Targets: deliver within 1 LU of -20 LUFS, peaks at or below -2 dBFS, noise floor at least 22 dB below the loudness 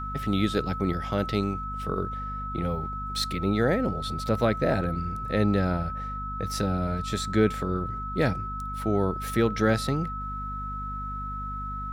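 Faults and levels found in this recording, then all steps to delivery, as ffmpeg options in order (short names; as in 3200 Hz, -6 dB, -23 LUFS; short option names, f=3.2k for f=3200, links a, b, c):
hum 50 Hz; harmonics up to 250 Hz; hum level -34 dBFS; steady tone 1300 Hz; tone level -33 dBFS; loudness -28.0 LUFS; peak -10.5 dBFS; loudness target -20.0 LUFS
-> -af "bandreject=f=50:t=h:w=4,bandreject=f=100:t=h:w=4,bandreject=f=150:t=h:w=4,bandreject=f=200:t=h:w=4,bandreject=f=250:t=h:w=4"
-af "bandreject=f=1.3k:w=30"
-af "volume=8dB"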